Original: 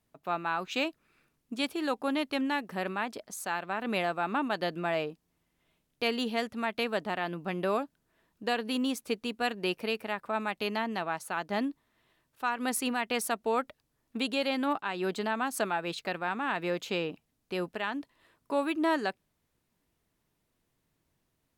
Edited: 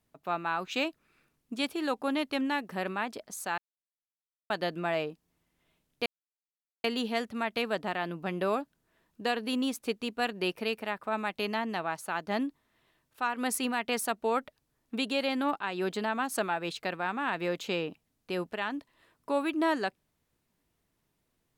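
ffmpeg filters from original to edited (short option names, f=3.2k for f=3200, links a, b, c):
-filter_complex "[0:a]asplit=4[a][b][c][d];[a]atrim=end=3.58,asetpts=PTS-STARTPTS,afade=t=out:st=3.576:d=0.004:c=hsin[e];[b]atrim=start=3.58:end=4.5,asetpts=PTS-STARTPTS,volume=0[f];[c]atrim=start=4.5:end=6.06,asetpts=PTS-STARTPTS,afade=t=in:d=0.004:c=hsin,afade=t=out:st=1.556:d=0.004:c=hsin,apad=pad_dur=0.78[g];[d]atrim=start=6.06,asetpts=PTS-STARTPTS,afade=t=in:d=0.004:c=hsin[h];[e][f][g][h]concat=n=4:v=0:a=1"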